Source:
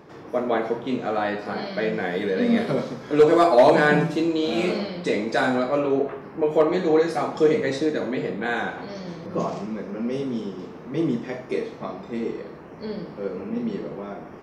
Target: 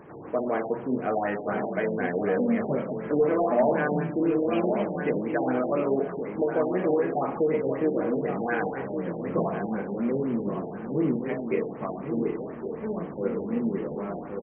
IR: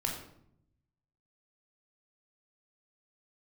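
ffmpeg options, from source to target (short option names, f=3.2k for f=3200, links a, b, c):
-filter_complex "[0:a]alimiter=limit=-16dB:level=0:latency=1:release=355,asplit=2[a][b];[b]adelay=1118,lowpass=f=1.8k:p=1,volume=-7dB,asplit=2[c][d];[d]adelay=1118,lowpass=f=1.8k:p=1,volume=0.31,asplit=2[e][f];[f]adelay=1118,lowpass=f=1.8k:p=1,volume=0.31,asplit=2[g][h];[h]adelay=1118,lowpass=f=1.8k:p=1,volume=0.31[i];[a][c][e][g][i]amix=inputs=5:normalize=0,afftfilt=real='re*lt(b*sr/1024,900*pow(3300/900,0.5+0.5*sin(2*PI*4*pts/sr)))':imag='im*lt(b*sr/1024,900*pow(3300/900,0.5+0.5*sin(2*PI*4*pts/sr)))':win_size=1024:overlap=0.75"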